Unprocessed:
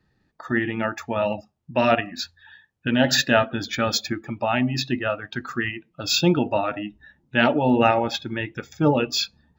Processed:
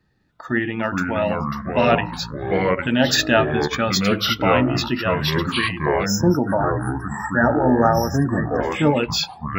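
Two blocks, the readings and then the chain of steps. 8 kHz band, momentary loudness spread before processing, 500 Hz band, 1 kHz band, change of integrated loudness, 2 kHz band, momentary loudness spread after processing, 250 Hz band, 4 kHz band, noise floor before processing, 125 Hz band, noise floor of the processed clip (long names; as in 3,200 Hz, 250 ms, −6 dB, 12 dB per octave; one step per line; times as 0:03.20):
+2.0 dB, 12 LU, +3.5 dB, +3.5 dB, +3.0 dB, +3.0 dB, 7 LU, +3.5 dB, +2.0 dB, −69 dBFS, +6.0 dB, −41 dBFS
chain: delay with pitch and tempo change per echo 290 ms, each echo −4 semitones, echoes 3
time-frequency box erased 0:06.06–0:08.61, 1,900–5,100 Hz
level +1.5 dB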